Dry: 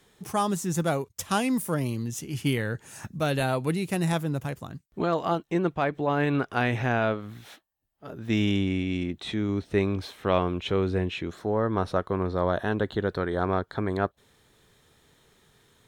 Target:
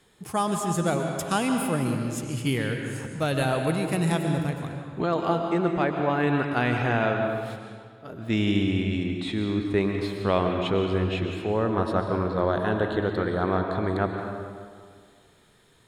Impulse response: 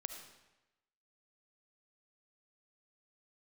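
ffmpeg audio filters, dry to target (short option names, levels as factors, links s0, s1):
-filter_complex "[0:a]bandreject=f=5900:w=6.6[s0];[1:a]atrim=start_sample=2205,asetrate=22491,aresample=44100[s1];[s0][s1]afir=irnorm=-1:irlink=0"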